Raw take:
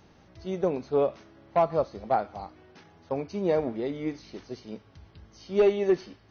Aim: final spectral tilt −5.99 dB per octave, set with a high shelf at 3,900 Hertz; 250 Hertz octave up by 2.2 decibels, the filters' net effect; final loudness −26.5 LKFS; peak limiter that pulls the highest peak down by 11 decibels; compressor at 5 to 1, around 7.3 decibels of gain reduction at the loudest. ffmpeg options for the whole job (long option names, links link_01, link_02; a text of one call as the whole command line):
ffmpeg -i in.wav -af "equalizer=frequency=250:width_type=o:gain=3.5,highshelf=frequency=3900:gain=-8.5,acompressor=threshold=-24dB:ratio=5,volume=11dB,alimiter=limit=-15.5dB:level=0:latency=1" out.wav